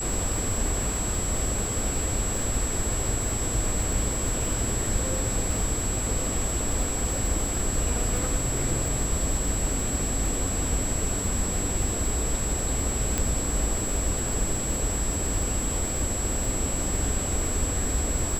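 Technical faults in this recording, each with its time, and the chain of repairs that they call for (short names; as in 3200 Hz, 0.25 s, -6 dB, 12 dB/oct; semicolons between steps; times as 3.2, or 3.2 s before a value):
crackle 59/s -30 dBFS
tone 7700 Hz -30 dBFS
13.18 pop -10 dBFS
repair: de-click; notch 7700 Hz, Q 30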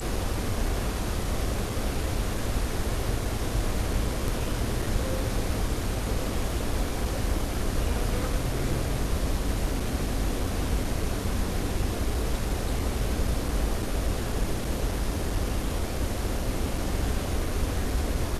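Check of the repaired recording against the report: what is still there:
none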